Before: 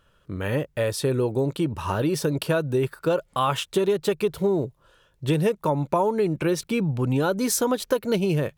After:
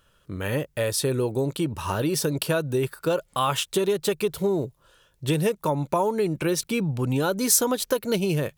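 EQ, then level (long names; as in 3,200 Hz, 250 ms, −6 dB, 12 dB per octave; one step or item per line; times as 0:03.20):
high-shelf EQ 4,000 Hz +9 dB
−1.5 dB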